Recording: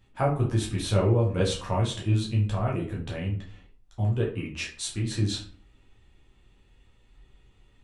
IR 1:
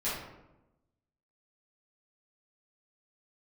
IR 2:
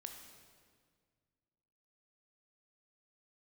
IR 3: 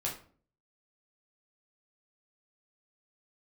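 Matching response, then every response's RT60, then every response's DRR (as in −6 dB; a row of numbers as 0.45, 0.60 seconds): 3; 0.95, 1.8, 0.45 seconds; −12.5, 3.5, −3.5 decibels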